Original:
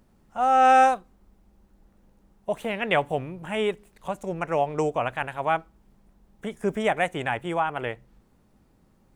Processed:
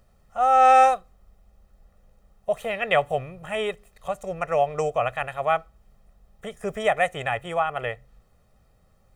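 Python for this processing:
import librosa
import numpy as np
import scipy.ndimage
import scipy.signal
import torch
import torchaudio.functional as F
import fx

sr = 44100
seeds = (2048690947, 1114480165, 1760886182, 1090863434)

y = fx.peak_eq(x, sr, hz=210.0, db=-6.0, octaves=1.2)
y = y + 0.66 * np.pad(y, (int(1.6 * sr / 1000.0), 0))[:len(y)]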